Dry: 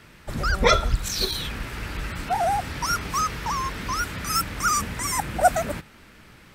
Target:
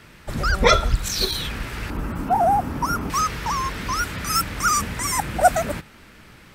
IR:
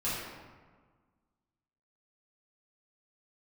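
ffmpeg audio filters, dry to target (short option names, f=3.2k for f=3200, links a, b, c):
-filter_complex "[0:a]asettb=1/sr,asplit=3[a][b][c];[a]atrim=end=1.904[d];[b]atrim=start=1.9:end=3.1,asetpts=PTS-STARTPTS,afade=t=in:d=0.004:c=qsin,afade=t=out:st=1.196:d=0.004:c=qsin,equalizer=f=250:t=o:w=1:g=9,equalizer=f=1k:t=o:w=1:g=5,equalizer=f=2k:t=o:w=1:g=-8,equalizer=f=4k:t=o:w=1:g=-11,equalizer=f=8k:t=o:w=1:g=-6[e];[c]atrim=start=3.096[f];[d][e]acrossfade=d=0.004:c1=hsin:c2=qsin[g];[g][f]acrossfade=d=0.004:c1=qsin:c2=hsin,volume=2.5dB"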